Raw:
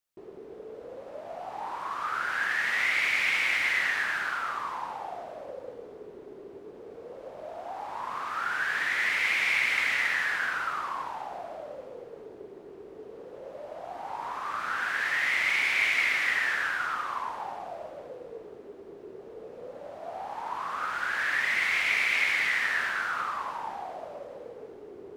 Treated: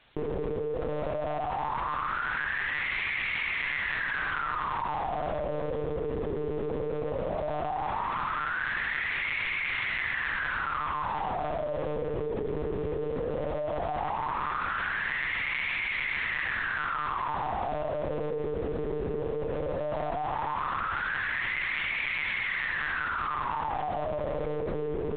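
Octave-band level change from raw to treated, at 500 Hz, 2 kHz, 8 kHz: +9.5 dB, -3.5 dB, under -35 dB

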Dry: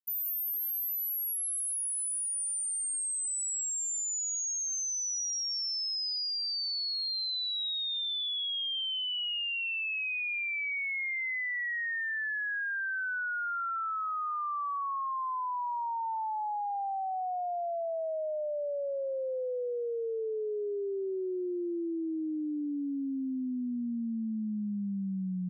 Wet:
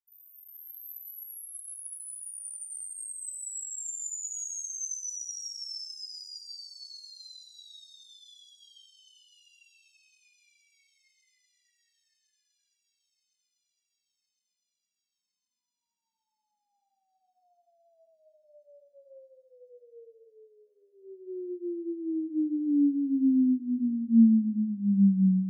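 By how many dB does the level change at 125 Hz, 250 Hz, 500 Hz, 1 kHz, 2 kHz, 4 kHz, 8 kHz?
n/a, +9.0 dB, -11.5 dB, under -40 dB, -38.5 dB, -13.5 dB, -5.0 dB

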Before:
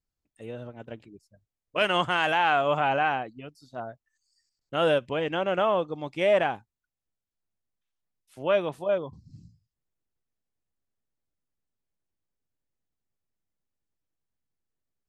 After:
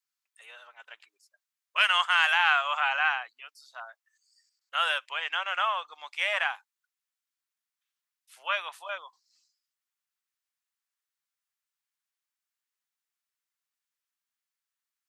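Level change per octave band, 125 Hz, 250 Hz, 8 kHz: under -40 dB, under -35 dB, n/a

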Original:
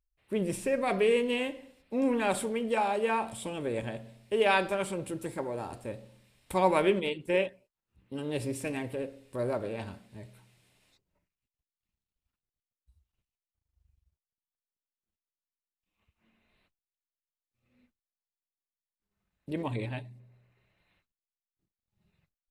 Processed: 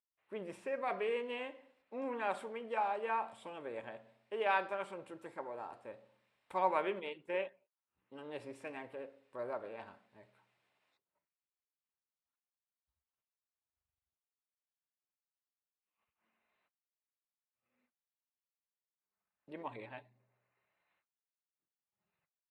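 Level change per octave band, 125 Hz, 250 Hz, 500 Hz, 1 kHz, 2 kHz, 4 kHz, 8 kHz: -21.5 dB, -16.0 dB, -10.0 dB, -5.0 dB, -8.0 dB, -13.0 dB, under -20 dB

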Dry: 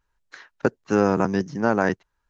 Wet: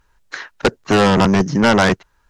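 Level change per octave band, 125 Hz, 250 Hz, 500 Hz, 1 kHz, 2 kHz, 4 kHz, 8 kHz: +10.0 dB, +7.5 dB, +5.5 dB, +8.5 dB, +9.5 dB, +21.0 dB, n/a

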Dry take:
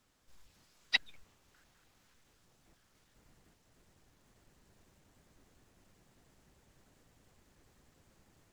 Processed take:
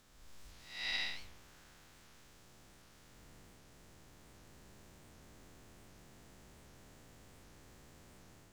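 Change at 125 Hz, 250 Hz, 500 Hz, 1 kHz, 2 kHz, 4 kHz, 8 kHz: +7.5, +6.5, +5.0, +1.0, -4.0, -2.5, +3.5 dB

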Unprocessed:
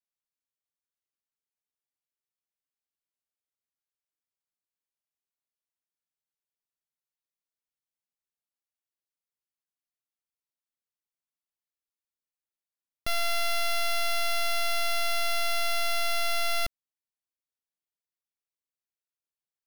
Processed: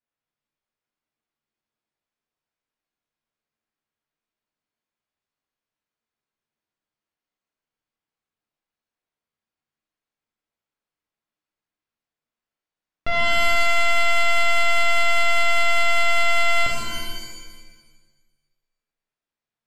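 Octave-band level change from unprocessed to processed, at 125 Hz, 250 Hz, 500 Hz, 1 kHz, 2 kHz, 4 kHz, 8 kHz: +11.0, +13.5, +9.0, +9.5, +12.5, +5.0, +4.0 dB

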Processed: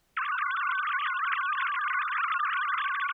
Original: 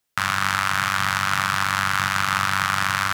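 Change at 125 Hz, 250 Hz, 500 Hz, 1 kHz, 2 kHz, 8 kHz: under -40 dB, under -35 dB, under -30 dB, -5.5 dB, -6.5 dB, under -40 dB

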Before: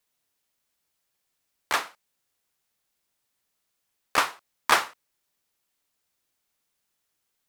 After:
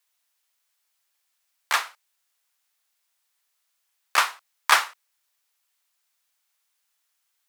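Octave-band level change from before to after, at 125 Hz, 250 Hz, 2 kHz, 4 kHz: under -25 dB, under -10 dB, +3.0 dB, +3.5 dB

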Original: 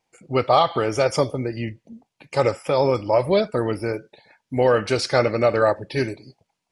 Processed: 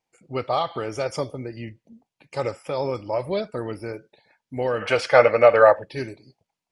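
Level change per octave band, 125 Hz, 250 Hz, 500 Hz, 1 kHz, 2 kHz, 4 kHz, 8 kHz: -7.0 dB, -7.0 dB, -0.5 dB, -1.5 dB, +2.0 dB, -5.5 dB, n/a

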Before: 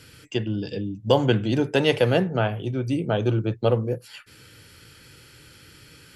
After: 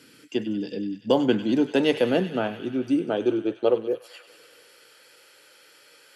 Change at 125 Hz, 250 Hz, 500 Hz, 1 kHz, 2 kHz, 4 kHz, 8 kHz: -13.0 dB, +2.0 dB, -0.5 dB, -3.0 dB, -3.5 dB, -3.5 dB, n/a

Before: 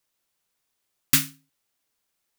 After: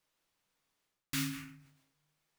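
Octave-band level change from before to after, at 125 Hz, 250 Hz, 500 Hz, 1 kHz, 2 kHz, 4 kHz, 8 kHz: -6.5 dB, -4.0 dB, under -10 dB, -9.0 dB, -10.5 dB, -12.5 dB, -16.5 dB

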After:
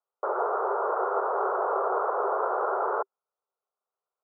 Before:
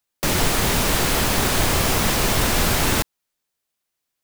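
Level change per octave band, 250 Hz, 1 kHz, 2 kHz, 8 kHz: -18.5 dB, -0.5 dB, -15.0 dB, under -40 dB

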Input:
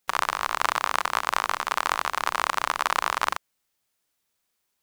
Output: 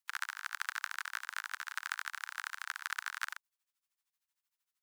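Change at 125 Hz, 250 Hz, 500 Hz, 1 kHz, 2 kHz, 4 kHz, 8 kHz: n/a, under -40 dB, under -40 dB, -20.0 dB, -9.5 dB, -13.5 dB, -11.5 dB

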